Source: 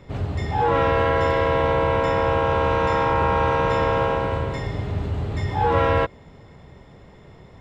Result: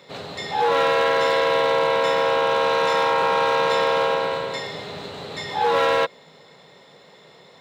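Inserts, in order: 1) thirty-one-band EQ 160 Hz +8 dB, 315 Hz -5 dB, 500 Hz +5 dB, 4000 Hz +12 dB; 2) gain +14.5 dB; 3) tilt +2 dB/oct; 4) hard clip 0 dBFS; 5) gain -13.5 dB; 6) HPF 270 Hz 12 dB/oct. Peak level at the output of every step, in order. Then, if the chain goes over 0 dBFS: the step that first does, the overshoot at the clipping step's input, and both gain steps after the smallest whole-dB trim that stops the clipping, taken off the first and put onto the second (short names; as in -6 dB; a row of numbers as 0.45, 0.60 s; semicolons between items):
-6.0, +8.5, +6.0, 0.0, -13.5, -9.0 dBFS; step 2, 6.0 dB; step 2 +8.5 dB, step 5 -7.5 dB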